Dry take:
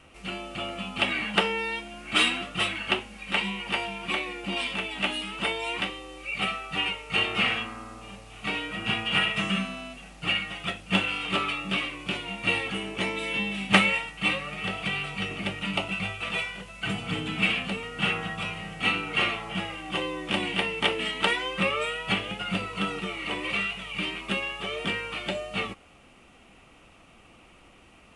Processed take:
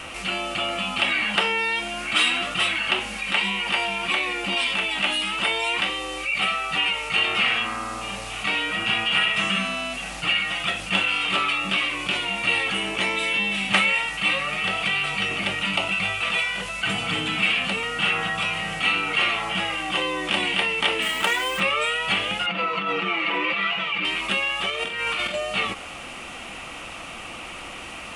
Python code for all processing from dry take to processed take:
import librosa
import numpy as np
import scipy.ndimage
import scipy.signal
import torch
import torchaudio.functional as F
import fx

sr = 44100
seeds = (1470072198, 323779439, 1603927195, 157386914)

y = fx.chain(x, sr, fx.median_filter(points=9),
    fx.quant_dither(seeds[0], bits=8, dither='none'), at=(21.02, 21.6))
y = fx.chain(y, sr, fx.comb(ms=6.0, depth=0.93),
    fx.over_compress(threshold_db=-29.0, ratio=-1.0),
    fx.bandpass_edges(low_hz=190.0, high_hz=2700.0), at=(22.46, 24.05))
y = fx.chain(y, sr, fx.over_compress(threshold_db=-36.0, ratio=-0.5),
    fx.room_flutter(wall_m=7.9, rt60_s=0.29), at=(24.7, 25.34))
y = fx.low_shelf(y, sr, hz=460.0, db=-10.5)
y = fx.notch(y, sr, hz=420.0, q=12.0)
y = fx.env_flatten(y, sr, amount_pct=50)